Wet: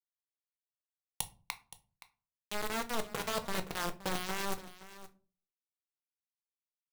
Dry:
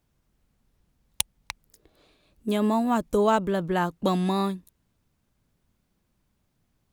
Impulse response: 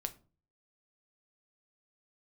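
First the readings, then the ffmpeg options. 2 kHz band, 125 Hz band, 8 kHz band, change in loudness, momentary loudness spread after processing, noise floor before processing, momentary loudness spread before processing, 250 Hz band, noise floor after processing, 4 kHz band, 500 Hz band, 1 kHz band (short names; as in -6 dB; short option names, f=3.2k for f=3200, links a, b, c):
-3.5 dB, -15.5 dB, -5.5 dB, -12.0 dB, 17 LU, -73 dBFS, 17 LU, -18.0 dB, under -85 dBFS, -4.0 dB, -14.5 dB, -11.5 dB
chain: -filter_complex "[0:a]areverse,acompressor=threshold=-32dB:ratio=10,areverse,acrusher=bits=4:mix=0:aa=0.000001,aecho=1:1:521:0.158[a];[1:a]atrim=start_sample=2205[b];[a][b]afir=irnorm=-1:irlink=0"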